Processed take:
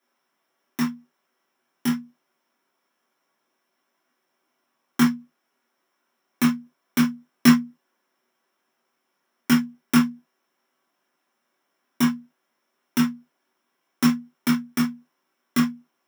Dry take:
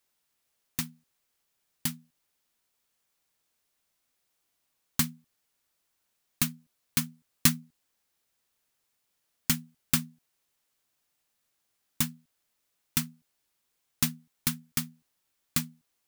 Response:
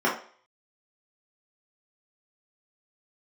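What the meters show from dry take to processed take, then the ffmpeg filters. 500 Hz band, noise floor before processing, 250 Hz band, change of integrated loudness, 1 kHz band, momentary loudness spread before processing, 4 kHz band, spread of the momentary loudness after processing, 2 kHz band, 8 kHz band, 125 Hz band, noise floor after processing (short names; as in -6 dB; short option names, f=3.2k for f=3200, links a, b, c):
+13.5 dB, -78 dBFS, +16.0 dB, +7.0 dB, +12.5 dB, 15 LU, +2.0 dB, 11 LU, +8.0 dB, -3.5 dB, +4.0 dB, -76 dBFS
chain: -filter_complex "[0:a]highpass=140[a];[1:a]atrim=start_sample=2205,atrim=end_sample=3528[b];[a][b]afir=irnorm=-1:irlink=0,volume=-5dB"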